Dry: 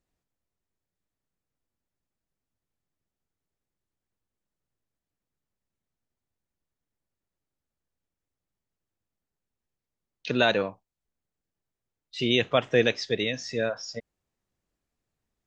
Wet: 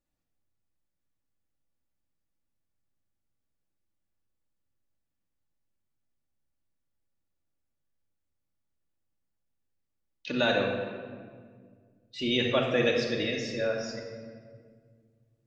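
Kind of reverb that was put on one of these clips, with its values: simulated room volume 2700 m³, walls mixed, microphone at 2.4 m; trim -6 dB

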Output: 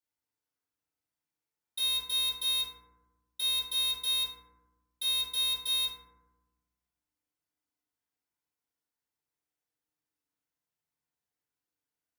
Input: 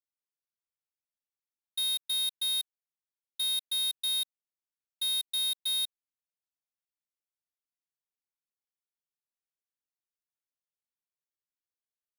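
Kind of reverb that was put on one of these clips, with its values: FDN reverb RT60 1.1 s, low-frequency decay 1.5×, high-frequency decay 0.3×, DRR -7.5 dB; trim -2.5 dB

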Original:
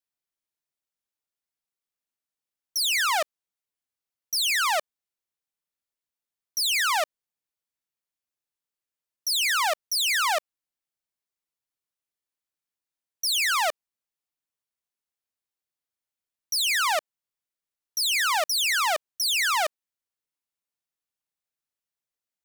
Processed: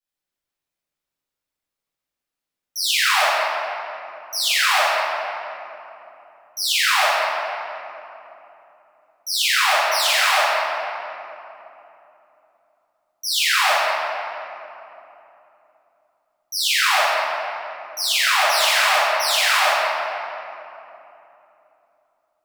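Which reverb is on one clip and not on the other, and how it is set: simulated room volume 150 m³, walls hard, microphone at 2.1 m; trim -6 dB

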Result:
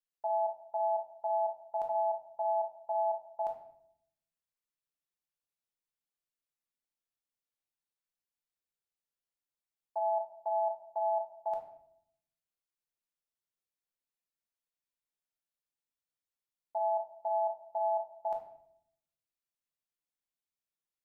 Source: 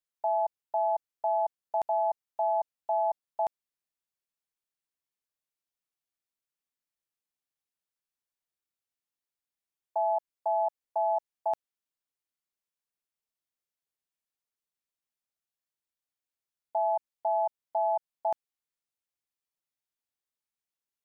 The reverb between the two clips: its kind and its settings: simulated room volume 140 m³, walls mixed, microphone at 0.82 m; trim -7.5 dB

